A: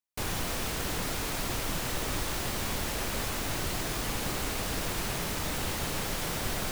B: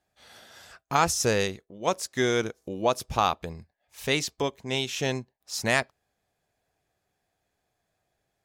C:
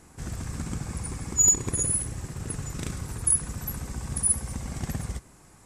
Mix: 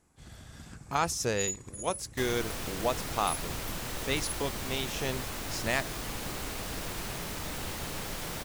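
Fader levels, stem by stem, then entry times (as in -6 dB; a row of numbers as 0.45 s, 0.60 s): -4.5 dB, -6.0 dB, -15.5 dB; 2.00 s, 0.00 s, 0.00 s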